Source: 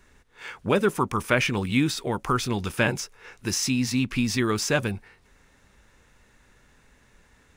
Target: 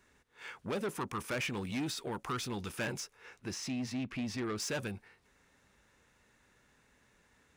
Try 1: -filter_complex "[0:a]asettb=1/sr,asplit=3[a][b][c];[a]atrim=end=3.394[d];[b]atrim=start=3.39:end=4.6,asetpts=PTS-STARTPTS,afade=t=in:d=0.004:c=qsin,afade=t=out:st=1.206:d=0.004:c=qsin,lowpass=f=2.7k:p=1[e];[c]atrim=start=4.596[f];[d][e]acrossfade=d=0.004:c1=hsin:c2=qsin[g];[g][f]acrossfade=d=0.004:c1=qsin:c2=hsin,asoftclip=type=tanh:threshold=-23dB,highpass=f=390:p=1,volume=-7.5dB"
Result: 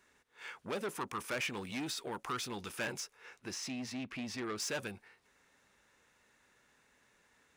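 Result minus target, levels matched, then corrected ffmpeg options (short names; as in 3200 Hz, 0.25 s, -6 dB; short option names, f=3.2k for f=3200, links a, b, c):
125 Hz band -5.5 dB
-filter_complex "[0:a]asettb=1/sr,asplit=3[a][b][c];[a]atrim=end=3.394[d];[b]atrim=start=3.39:end=4.6,asetpts=PTS-STARTPTS,afade=t=in:d=0.004:c=qsin,afade=t=out:st=1.206:d=0.004:c=qsin,lowpass=f=2.7k:p=1[e];[c]atrim=start=4.596[f];[d][e]acrossfade=d=0.004:c1=hsin:c2=qsin[g];[g][f]acrossfade=d=0.004:c1=qsin:c2=hsin,asoftclip=type=tanh:threshold=-23dB,highpass=f=110:p=1,volume=-7.5dB"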